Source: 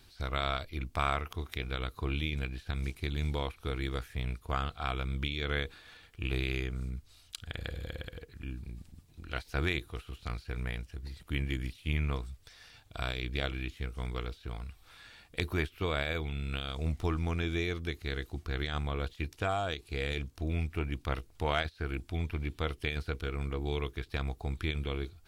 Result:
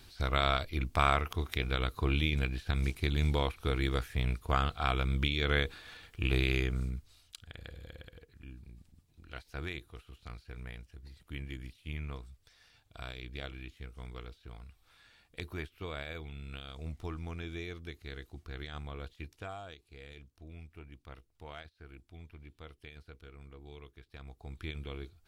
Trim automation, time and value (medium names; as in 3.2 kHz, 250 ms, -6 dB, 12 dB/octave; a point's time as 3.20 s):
6.78 s +3.5 dB
7.48 s -8.5 dB
19.23 s -8.5 dB
19.95 s -16.5 dB
24.10 s -16.5 dB
24.67 s -7 dB